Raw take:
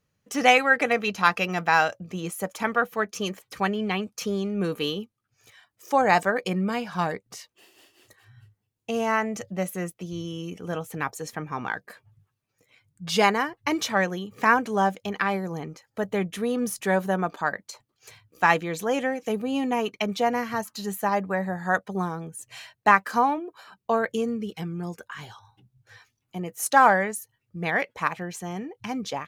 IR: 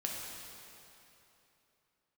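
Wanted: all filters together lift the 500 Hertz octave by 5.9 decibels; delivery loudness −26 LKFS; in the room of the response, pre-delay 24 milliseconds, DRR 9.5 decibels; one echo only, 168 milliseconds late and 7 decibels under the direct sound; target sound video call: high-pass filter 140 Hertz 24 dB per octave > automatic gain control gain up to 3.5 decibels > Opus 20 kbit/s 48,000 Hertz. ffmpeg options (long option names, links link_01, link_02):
-filter_complex "[0:a]equalizer=frequency=500:width_type=o:gain=7,aecho=1:1:168:0.447,asplit=2[link_01][link_02];[1:a]atrim=start_sample=2205,adelay=24[link_03];[link_02][link_03]afir=irnorm=-1:irlink=0,volume=-12dB[link_04];[link_01][link_04]amix=inputs=2:normalize=0,highpass=frequency=140:width=0.5412,highpass=frequency=140:width=1.3066,dynaudnorm=maxgain=3.5dB,volume=-3dB" -ar 48000 -c:a libopus -b:a 20k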